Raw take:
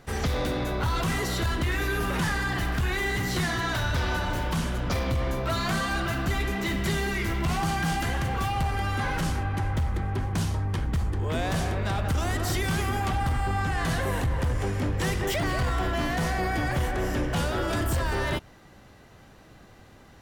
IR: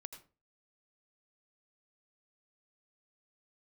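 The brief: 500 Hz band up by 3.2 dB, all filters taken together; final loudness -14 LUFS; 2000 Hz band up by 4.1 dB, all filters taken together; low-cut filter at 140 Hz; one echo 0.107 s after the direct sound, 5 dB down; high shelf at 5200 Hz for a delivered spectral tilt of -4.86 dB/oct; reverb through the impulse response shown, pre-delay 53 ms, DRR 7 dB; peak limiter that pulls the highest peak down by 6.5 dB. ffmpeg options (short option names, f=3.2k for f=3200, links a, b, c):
-filter_complex "[0:a]highpass=140,equalizer=f=500:t=o:g=4,equalizer=f=2k:t=o:g=5.5,highshelf=f=5.2k:g=-5,alimiter=limit=-21.5dB:level=0:latency=1,aecho=1:1:107:0.562,asplit=2[a][b];[1:a]atrim=start_sample=2205,adelay=53[c];[b][c]afir=irnorm=-1:irlink=0,volume=-2dB[d];[a][d]amix=inputs=2:normalize=0,volume=14dB"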